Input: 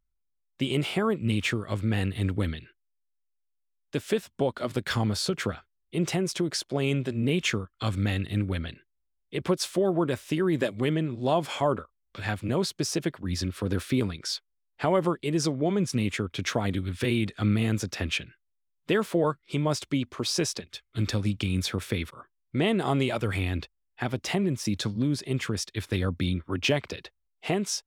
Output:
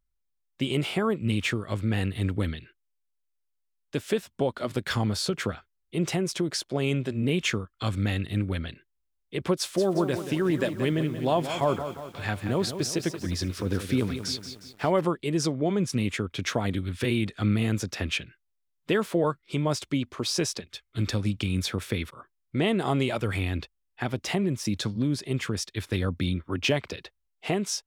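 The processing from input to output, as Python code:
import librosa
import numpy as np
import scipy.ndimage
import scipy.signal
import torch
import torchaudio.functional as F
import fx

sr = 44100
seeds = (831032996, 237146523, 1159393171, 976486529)

y = fx.echo_crushed(x, sr, ms=179, feedback_pct=55, bits=8, wet_db=-9.5, at=(9.57, 15.01))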